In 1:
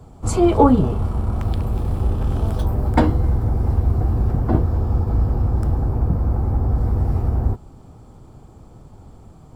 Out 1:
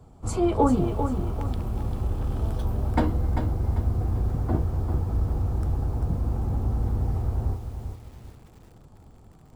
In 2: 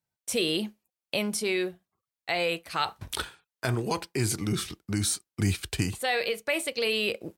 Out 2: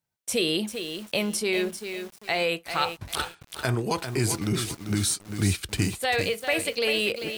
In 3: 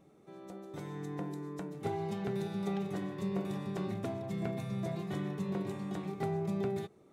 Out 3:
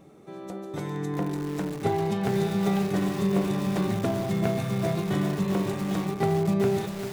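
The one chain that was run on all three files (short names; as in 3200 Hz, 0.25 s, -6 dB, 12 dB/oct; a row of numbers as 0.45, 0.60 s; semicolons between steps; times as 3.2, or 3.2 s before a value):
lo-fi delay 0.394 s, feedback 35%, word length 7-bit, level -7.5 dB; match loudness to -27 LUFS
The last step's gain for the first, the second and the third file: -7.5, +2.0, +10.0 dB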